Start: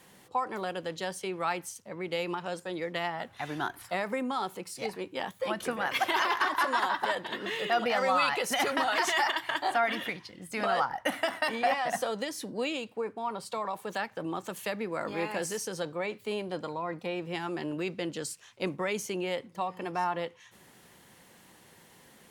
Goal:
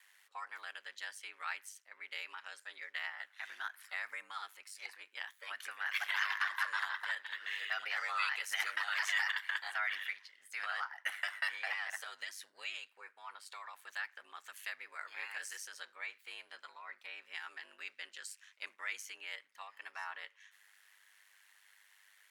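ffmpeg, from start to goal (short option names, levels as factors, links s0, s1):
-af "aeval=exprs='val(0)*sin(2*PI*50*n/s)':c=same,highpass=f=1700:t=q:w=2.2,volume=0.473"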